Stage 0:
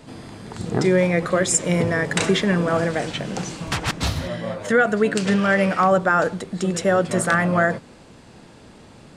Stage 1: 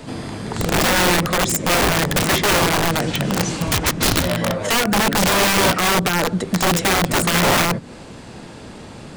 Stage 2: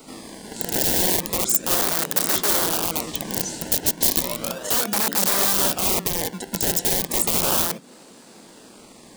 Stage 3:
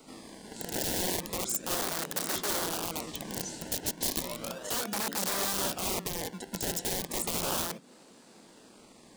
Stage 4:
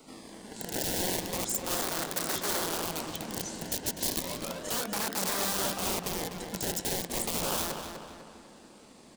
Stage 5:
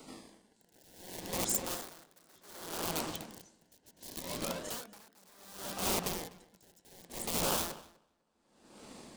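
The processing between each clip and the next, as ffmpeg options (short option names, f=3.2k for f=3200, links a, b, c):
-filter_complex "[0:a]acrossover=split=330[a][b];[b]acompressor=threshold=-30dB:ratio=4[c];[a][c]amix=inputs=2:normalize=0,aeval=exprs='(mod(10.6*val(0)+1,2)-1)/10.6':c=same,volume=9dB"
-filter_complex "[0:a]highpass=f=200:w=0.5412,highpass=f=200:w=1.3066,aemphasis=mode=production:type=50kf,acrossover=split=2800[a][b];[a]acrusher=samples=25:mix=1:aa=0.000001:lfo=1:lforange=25:lforate=0.34[c];[c][b]amix=inputs=2:normalize=0,volume=-8.5dB"
-af "highshelf=f=12k:g=-7.5,volume=-8.5dB"
-filter_complex "[0:a]asplit=2[a][b];[b]adelay=249,lowpass=f=3.9k:p=1,volume=-6dB,asplit=2[c][d];[d]adelay=249,lowpass=f=3.9k:p=1,volume=0.5,asplit=2[e][f];[f]adelay=249,lowpass=f=3.9k:p=1,volume=0.5,asplit=2[g][h];[h]adelay=249,lowpass=f=3.9k:p=1,volume=0.5,asplit=2[i][j];[j]adelay=249,lowpass=f=3.9k:p=1,volume=0.5,asplit=2[k][l];[l]adelay=249,lowpass=f=3.9k:p=1,volume=0.5[m];[a][c][e][g][i][k][m]amix=inputs=7:normalize=0"
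-af "areverse,acompressor=mode=upward:threshold=-44dB:ratio=2.5,areverse,aeval=exprs='val(0)*pow(10,-31*(0.5-0.5*cos(2*PI*0.67*n/s))/20)':c=same"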